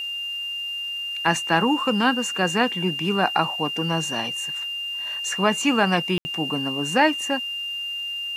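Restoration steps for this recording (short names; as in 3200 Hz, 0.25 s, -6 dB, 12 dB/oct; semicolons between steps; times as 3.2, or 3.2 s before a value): de-click; notch 2800 Hz, Q 30; room tone fill 6.18–6.25; expander -22 dBFS, range -21 dB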